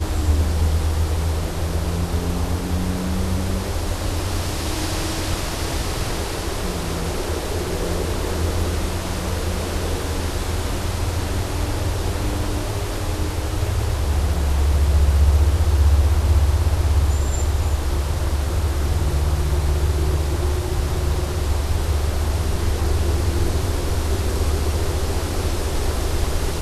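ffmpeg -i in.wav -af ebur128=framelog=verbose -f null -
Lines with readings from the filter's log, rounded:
Integrated loudness:
  I:         -22.4 LUFS
  Threshold: -32.4 LUFS
Loudness range:
  LRA:         5.6 LU
  Threshold: -42.4 LUFS
  LRA low:   -24.5 LUFS
  LRA high:  -18.9 LUFS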